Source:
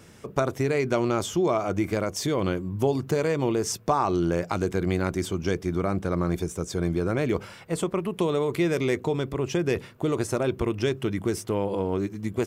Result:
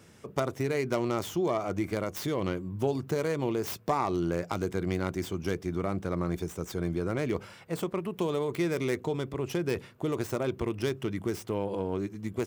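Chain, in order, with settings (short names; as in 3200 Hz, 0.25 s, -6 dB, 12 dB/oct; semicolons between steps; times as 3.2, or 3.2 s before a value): tracing distortion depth 0.14 ms; HPF 56 Hz; gain -5 dB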